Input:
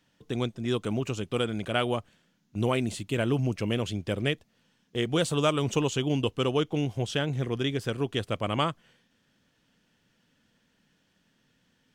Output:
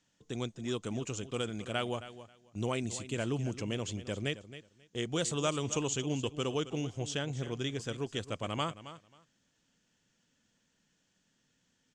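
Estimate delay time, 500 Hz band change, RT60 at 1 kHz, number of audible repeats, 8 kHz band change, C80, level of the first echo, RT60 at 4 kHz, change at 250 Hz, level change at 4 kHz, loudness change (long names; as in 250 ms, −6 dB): 269 ms, −7.5 dB, no reverb audible, 2, +2.0 dB, no reverb audible, −14.0 dB, no reverb audible, −7.5 dB, −5.5 dB, −6.5 dB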